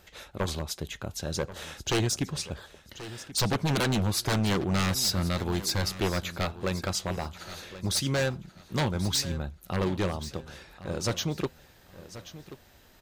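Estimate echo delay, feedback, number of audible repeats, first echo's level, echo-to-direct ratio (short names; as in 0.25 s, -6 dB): 1.083 s, 26%, 2, -15.0 dB, -14.5 dB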